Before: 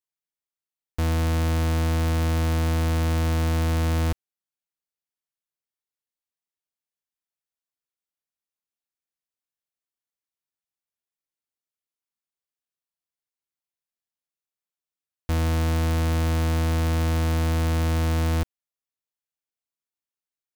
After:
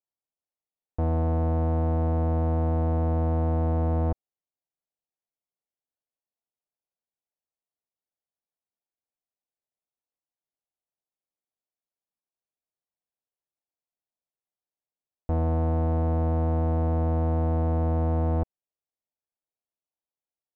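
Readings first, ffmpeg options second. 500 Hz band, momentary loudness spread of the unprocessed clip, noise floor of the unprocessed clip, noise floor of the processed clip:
+2.0 dB, 5 LU, below −85 dBFS, below −85 dBFS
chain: -af "lowpass=frequency=730:width_type=q:width=1.8,volume=-2dB"

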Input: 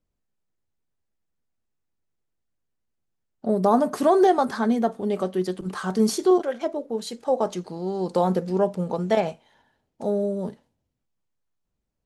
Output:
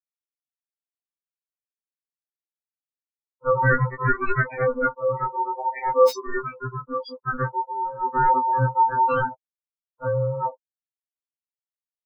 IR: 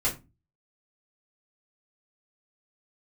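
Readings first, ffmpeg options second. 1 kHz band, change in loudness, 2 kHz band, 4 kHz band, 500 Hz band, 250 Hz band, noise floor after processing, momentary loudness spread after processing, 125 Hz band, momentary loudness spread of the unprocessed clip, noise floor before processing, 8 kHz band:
+5.0 dB, +0.5 dB, +12.0 dB, −7.0 dB, −2.0 dB, −12.0 dB, below −85 dBFS, 11 LU, +6.0 dB, 11 LU, −79 dBFS, below −10 dB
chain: -filter_complex "[0:a]aeval=exprs='val(0)+0.00224*sin(2*PI*510*n/s)':channel_layout=same,asubboost=boost=10.5:cutoff=96,afftfilt=real='re*gte(hypot(re,im),0.0891)':imag='im*gte(hypot(re,im),0.0891)':win_size=1024:overlap=0.75,equalizer=frequency=5200:width=8:gain=5.5,aeval=exprs='val(0)*sin(2*PI*730*n/s)':channel_layout=same,acrossover=split=120|1400|2300[link_01][link_02][link_03][link_04];[link_04]aeval=exprs='(mod(23.7*val(0)+1,2)-1)/23.7':channel_layout=same[link_05];[link_01][link_02][link_03][link_05]amix=inputs=4:normalize=0,afftfilt=real='re*2.45*eq(mod(b,6),0)':imag='im*2.45*eq(mod(b,6),0)':win_size=2048:overlap=0.75,volume=6dB"

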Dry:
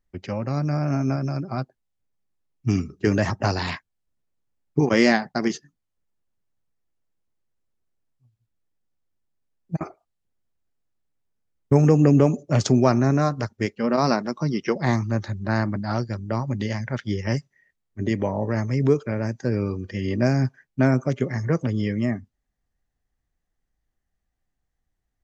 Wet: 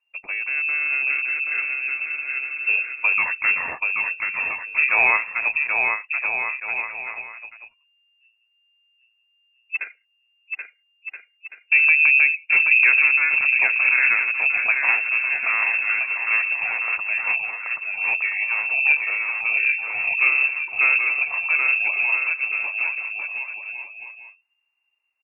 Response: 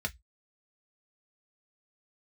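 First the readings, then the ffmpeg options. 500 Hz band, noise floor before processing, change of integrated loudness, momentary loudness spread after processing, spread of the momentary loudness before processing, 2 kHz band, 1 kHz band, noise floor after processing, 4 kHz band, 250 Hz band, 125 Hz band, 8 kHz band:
−17.0 dB, −79 dBFS, +4.5 dB, 14 LU, 12 LU, +17.0 dB, −1.5 dB, −68 dBFS, below −15 dB, below −30 dB, below −35 dB, can't be measured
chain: -af "aecho=1:1:780|1326|1708|1976|2163:0.631|0.398|0.251|0.158|0.1,lowpass=frequency=2400:width_type=q:width=0.5098,lowpass=frequency=2400:width_type=q:width=0.6013,lowpass=frequency=2400:width_type=q:width=0.9,lowpass=frequency=2400:width_type=q:width=2.563,afreqshift=-2800"

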